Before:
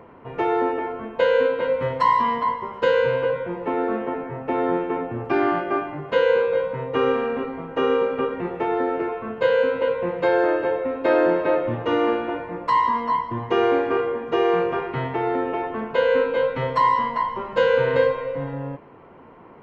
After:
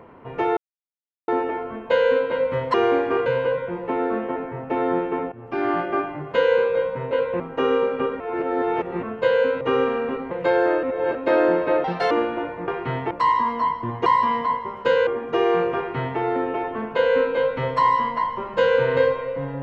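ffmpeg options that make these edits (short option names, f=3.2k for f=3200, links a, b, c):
-filter_complex "[0:a]asplit=19[a][b][c][d][e][f][g][h][i][j][k][l][m][n][o][p][q][r][s];[a]atrim=end=0.57,asetpts=PTS-STARTPTS,afade=t=out:st=0.566:d=0.004:c=hsin,apad=pad_dur=0.71[t];[b]atrim=start=0.57:end=2.032,asetpts=PTS-STARTPTS,afade=t=in:d=0.004:c=hsin[u];[c]atrim=start=13.538:end=14.062[v];[d]atrim=start=3.038:end=5.1,asetpts=PTS-STARTPTS,afade=t=out:st=2.058:d=0.004:c=hsin:silence=0.125893[w];[e]atrim=start=5.1:end=6.892,asetpts=PTS-STARTPTS,afade=t=in:d=0.47:silence=0.125893[x];[f]atrim=start=9.798:end=10.092[y];[g]atrim=start=7.588:end=8.392[z];[h]atrim=start=8.388:end=9.222,asetpts=PTS-STARTPTS,areverse[aa];[i]atrim=start=9.218:end=9.802[ab];[j]atrim=start=6.888:end=7.592[ac];[k]atrim=start=10.088:end=10.612[ad];[l]atrim=start=10.608:end=10.932,asetpts=PTS-STARTPTS,areverse[ae];[m]atrim=start=10.928:end=11.624[af];[n]atrim=start=11.62:end=12.02,asetpts=PTS-STARTPTS,asetrate=65709,aresample=44100[ag];[o]atrim=start=12.016:end=12.592[ah];[p]atrim=start=14.758:end=15.192[ai];[q]atrim=start=12.588:end=13.542[aj];[r]atrim=start=2.028:end=3.042[ak];[s]atrim=start=14.058[al];[t][u]concat=n=2:v=0:a=1[am];[am][v]acrossfade=d=0.004:c1=hsin:c2=hsin[an];[w][x]concat=n=2:v=0:a=1[ao];[an][ao]acrossfade=d=0.004:c1=hsin:c2=hsin[ap];[ap][y]acrossfade=d=0.004:c1=hsin:c2=hsin[aq];[aq][z]acrossfade=d=0.004:c1=hsin:c2=hsin[ar];[ar][aa]acrossfade=d=0.004:c1=hsin:c2=hsin[as];[as][ab]acrossfade=d=0.004:c1=hsin:c2=hsin[at];[at][ac]acrossfade=d=0.004:c1=hsin:c2=hsin[au];[au][ad]acrossfade=d=0.004:c1=hsin:c2=hsin[av];[av][ae]acrossfade=d=0.004:c1=hsin:c2=hsin[aw];[aw][af]acrossfade=d=0.004:c1=hsin:c2=hsin[ax];[ax][ag]acrossfade=d=0.004:c1=hsin:c2=hsin[ay];[ay][ah]acrossfade=d=0.004:c1=hsin:c2=hsin[az];[az][ai]acrossfade=d=0.004:c1=hsin:c2=hsin[ba];[ba][aj]acrossfade=d=0.004:c1=hsin:c2=hsin[bb];[bb][ak]acrossfade=d=0.004:c1=hsin:c2=hsin[bc];[bc][al]acrossfade=d=0.004:c1=hsin:c2=hsin"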